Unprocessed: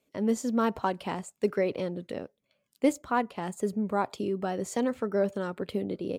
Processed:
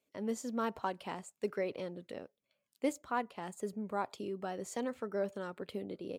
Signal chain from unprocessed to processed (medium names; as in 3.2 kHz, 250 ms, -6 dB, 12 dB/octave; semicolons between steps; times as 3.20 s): bass shelf 320 Hz -6 dB; trim -6.5 dB